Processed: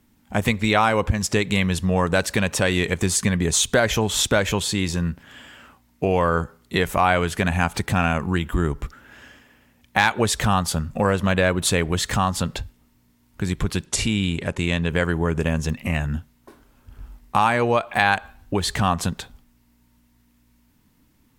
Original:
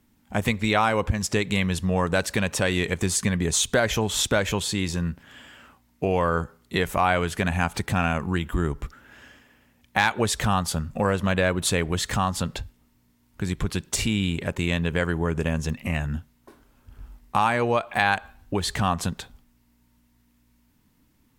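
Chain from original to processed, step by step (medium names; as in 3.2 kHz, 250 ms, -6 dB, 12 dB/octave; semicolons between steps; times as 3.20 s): 13.85–14.89 s: elliptic low-pass 11 kHz, stop band 40 dB; trim +3 dB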